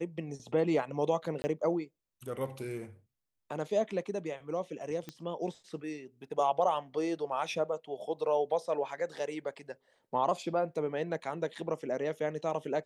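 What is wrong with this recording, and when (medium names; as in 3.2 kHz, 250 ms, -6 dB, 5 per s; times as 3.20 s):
1.42–1.44 s: dropout 20 ms
5.09 s: pop -25 dBFS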